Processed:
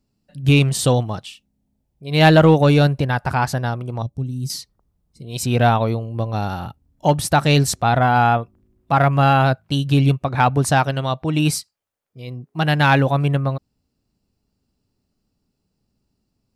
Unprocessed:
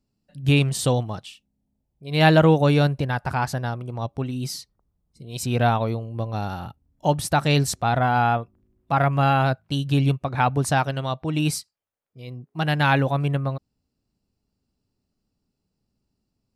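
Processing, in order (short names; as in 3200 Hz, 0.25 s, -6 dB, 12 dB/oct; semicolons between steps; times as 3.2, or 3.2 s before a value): 4.02–4.5 EQ curve 140 Hz 0 dB, 1800 Hz -27 dB, 6300 Hz -4 dB; in parallel at -5.5 dB: hard clip -13 dBFS, distortion -15 dB; on the sum: gain +1 dB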